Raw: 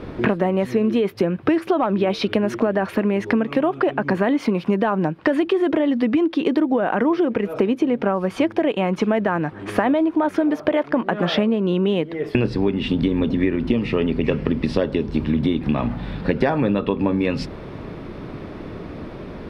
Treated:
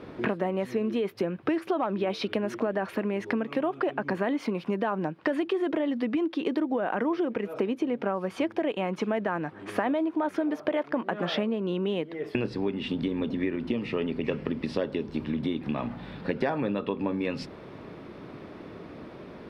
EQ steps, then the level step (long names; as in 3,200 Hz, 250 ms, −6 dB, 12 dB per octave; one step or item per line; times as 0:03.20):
high-pass filter 190 Hz 6 dB per octave
−7.5 dB